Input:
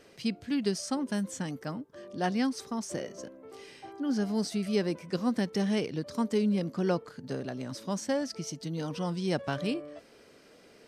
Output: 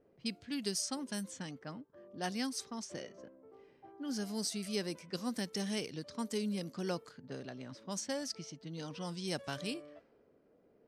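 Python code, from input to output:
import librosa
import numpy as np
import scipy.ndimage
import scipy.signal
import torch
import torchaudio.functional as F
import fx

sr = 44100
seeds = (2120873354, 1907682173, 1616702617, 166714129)

y = fx.env_lowpass(x, sr, base_hz=590.0, full_db=-27.0)
y = librosa.effects.preemphasis(y, coef=0.8, zi=[0.0])
y = y * 10.0 ** (4.5 / 20.0)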